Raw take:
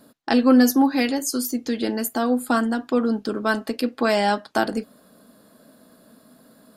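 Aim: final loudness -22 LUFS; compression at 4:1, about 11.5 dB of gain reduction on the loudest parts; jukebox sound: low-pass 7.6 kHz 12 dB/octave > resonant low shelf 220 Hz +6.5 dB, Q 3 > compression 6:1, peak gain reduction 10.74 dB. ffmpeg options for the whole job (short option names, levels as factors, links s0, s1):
-af "acompressor=threshold=0.0562:ratio=4,lowpass=7600,lowshelf=f=220:t=q:w=3:g=6.5,acompressor=threshold=0.02:ratio=6,volume=6.31"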